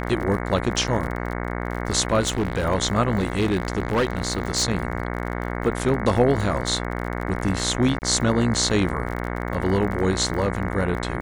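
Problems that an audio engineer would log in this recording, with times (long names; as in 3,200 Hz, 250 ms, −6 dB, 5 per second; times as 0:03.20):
mains buzz 60 Hz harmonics 37 −28 dBFS
surface crackle 38 per second −29 dBFS
0:02.20–0:02.66: clipping −18.5 dBFS
0:03.18–0:04.64: clipping −16.5 dBFS
0:07.99–0:08.02: drop-out 29 ms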